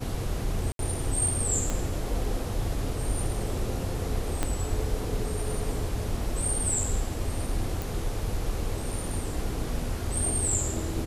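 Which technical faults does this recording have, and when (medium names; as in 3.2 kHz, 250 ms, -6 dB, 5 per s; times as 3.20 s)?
0.72–0.79 s: dropout 72 ms
1.70 s: pop -16 dBFS
4.43 s: pop -12 dBFS
7.82 s: pop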